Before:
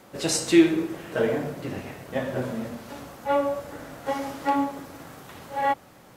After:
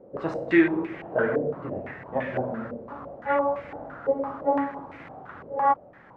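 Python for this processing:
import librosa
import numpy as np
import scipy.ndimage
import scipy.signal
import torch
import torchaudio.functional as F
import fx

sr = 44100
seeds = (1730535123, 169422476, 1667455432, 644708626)

y = fx.filter_held_lowpass(x, sr, hz=5.9, low_hz=500.0, high_hz=2200.0)
y = y * librosa.db_to_amplitude(-3.0)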